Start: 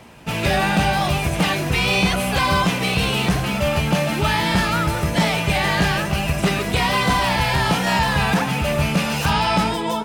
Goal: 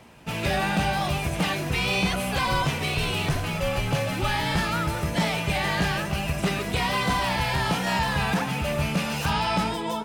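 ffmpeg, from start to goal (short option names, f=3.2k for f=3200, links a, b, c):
-filter_complex "[0:a]asettb=1/sr,asplit=3[a][b][c];[a]atrim=end=2.454[d];[b]atrim=start=2.45:end=4.57,asetpts=PTS-STARTPTS,afade=t=in:d=0.004:c=qsin,afade=t=out:st=2.116:d=0.004:c=qsin,afreqshift=-36[e];[c]atrim=start=4.566[f];[d][e]acrossfade=d=0.004:c1=hsin:c2=qsin[g];[g][f]acrossfade=d=0.004:c1=qsin:c2=hsin,volume=-6dB"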